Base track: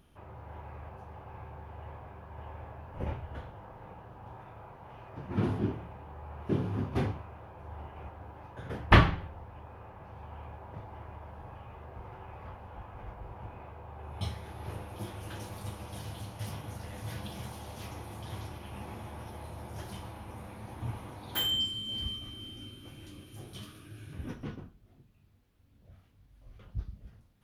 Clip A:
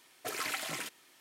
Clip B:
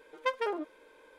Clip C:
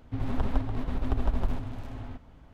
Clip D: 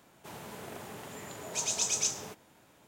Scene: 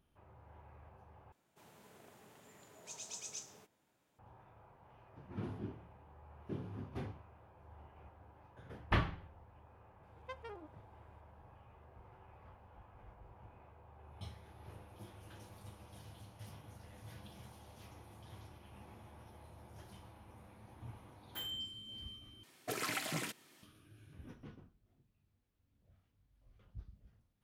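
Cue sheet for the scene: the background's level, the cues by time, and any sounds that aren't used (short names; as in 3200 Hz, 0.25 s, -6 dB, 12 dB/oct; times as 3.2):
base track -13 dB
1.32 replace with D -16.5 dB
10.03 add B -17.5 dB
22.43 replace with A -3.5 dB + bell 140 Hz +12 dB 2.5 oct
not used: C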